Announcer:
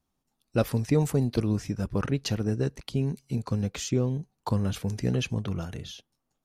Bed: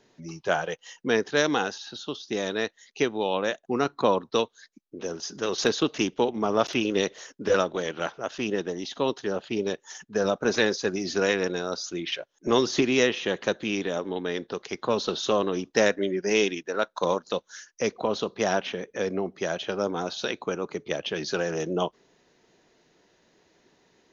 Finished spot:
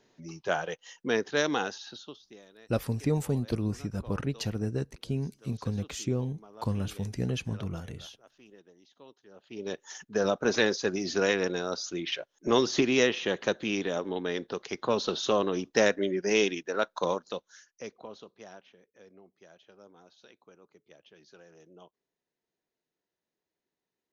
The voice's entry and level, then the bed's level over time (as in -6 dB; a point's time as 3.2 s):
2.15 s, -4.0 dB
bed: 1.91 s -4 dB
2.48 s -27 dB
9.28 s -27 dB
9.78 s -2 dB
16.95 s -2 dB
18.74 s -27 dB